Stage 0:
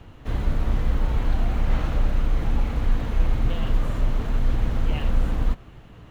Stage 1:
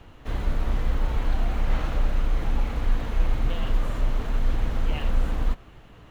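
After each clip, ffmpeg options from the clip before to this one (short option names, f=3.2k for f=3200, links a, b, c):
-af "equalizer=f=120:w=0.46:g=-5.5"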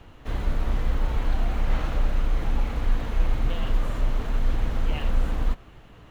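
-af anull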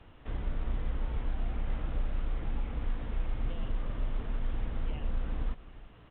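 -filter_complex "[0:a]acrossover=split=500|1300[a][b][c];[a]acompressor=threshold=-19dB:ratio=4[d];[b]acompressor=threshold=-46dB:ratio=4[e];[c]acompressor=threshold=-47dB:ratio=4[f];[d][e][f]amix=inputs=3:normalize=0,aecho=1:1:351:0.119,volume=-7dB" -ar 8000 -c:a pcm_alaw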